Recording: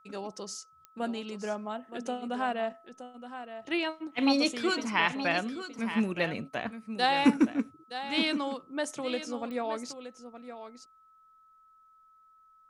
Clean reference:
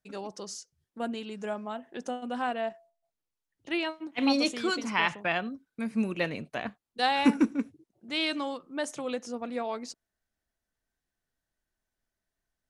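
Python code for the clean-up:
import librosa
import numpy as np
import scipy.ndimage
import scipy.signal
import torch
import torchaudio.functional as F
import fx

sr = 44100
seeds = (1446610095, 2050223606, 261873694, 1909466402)

y = fx.fix_declick_ar(x, sr, threshold=10.0)
y = fx.notch(y, sr, hz=1300.0, q=30.0)
y = fx.fix_echo_inverse(y, sr, delay_ms=920, level_db=-11.0)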